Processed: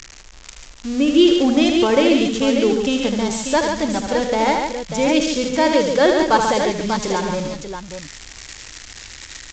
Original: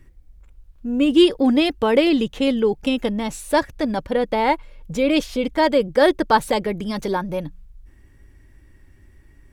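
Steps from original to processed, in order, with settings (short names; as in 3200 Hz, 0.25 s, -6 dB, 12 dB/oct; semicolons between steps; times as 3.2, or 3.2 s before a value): switching spikes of -16 dBFS; tapped delay 77/140/198/277/590 ms -6.5/-6/-19/-18.5/-8 dB; µ-law 128 kbps 16000 Hz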